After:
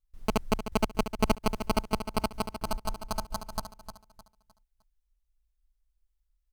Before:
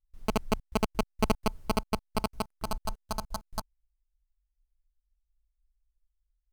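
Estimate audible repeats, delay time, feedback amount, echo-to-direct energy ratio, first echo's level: 3, 306 ms, 32%, −9.5 dB, −10.0 dB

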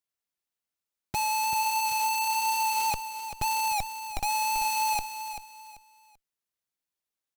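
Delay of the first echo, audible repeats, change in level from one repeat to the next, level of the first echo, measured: 388 ms, 3, −10.5 dB, −10.0 dB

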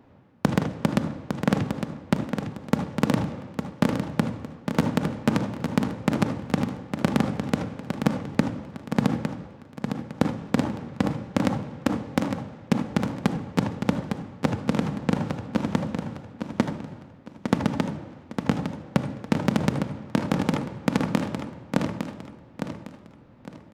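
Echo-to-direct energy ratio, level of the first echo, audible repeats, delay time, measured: −6.5 dB, −7.0 dB, 3, 857 ms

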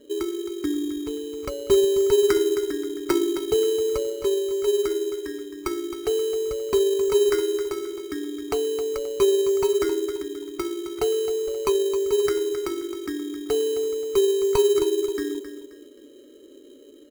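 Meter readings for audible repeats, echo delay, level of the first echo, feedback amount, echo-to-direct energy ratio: 3, 265 ms, −11.0 dB, 33%, −10.5 dB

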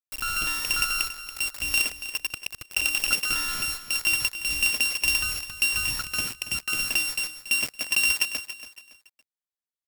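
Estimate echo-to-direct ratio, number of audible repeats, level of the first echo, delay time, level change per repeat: −12.0 dB, 3, −12.5 dB, 281 ms, −9.5 dB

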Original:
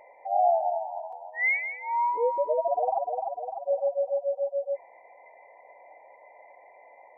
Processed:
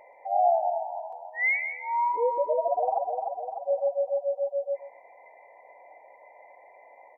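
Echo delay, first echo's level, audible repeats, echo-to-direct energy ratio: 129 ms, −14.0 dB, 2, −14.0 dB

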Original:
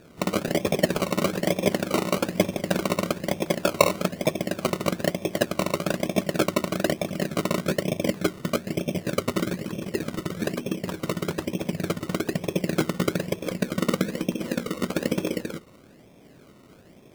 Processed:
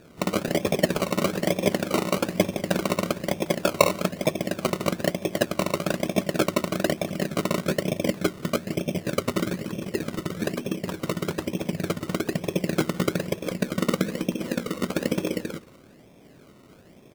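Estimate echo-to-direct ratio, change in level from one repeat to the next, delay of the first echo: −21.5 dB, −11.0 dB, 180 ms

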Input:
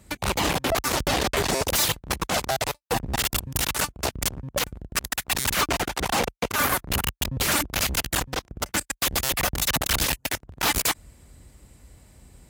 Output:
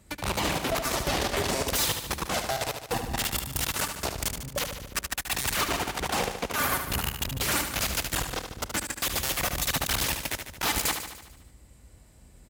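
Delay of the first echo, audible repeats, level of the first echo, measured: 74 ms, 7, −7.5 dB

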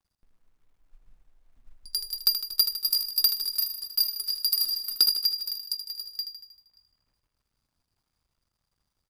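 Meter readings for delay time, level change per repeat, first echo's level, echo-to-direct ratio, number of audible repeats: 78 ms, −4.5 dB, −8.5 dB, −6.5 dB, 6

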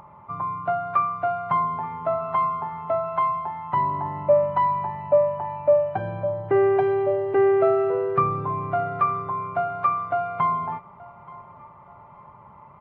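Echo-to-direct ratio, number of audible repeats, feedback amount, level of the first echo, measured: −21.0 dB, 2, 32%, −21.5 dB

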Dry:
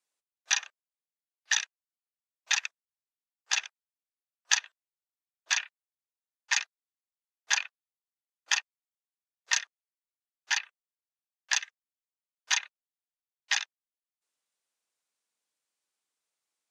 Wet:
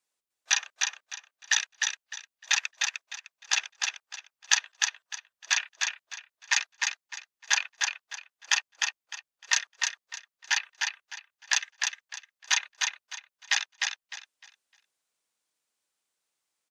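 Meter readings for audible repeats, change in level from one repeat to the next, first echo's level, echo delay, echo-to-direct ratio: 3, −12.0 dB, −3.5 dB, 304 ms, −3.0 dB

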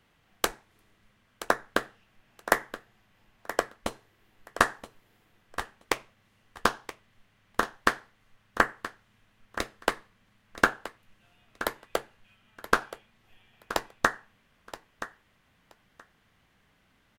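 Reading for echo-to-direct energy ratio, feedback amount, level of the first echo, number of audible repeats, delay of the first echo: −13.5 dB, 16%, −13.5 dB, 2, 975 ms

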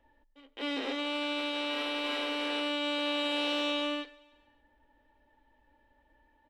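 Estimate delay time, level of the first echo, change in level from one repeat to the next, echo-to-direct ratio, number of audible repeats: 142 ms, −24.0 dB, −4.5 dB, −22.5 dB, 3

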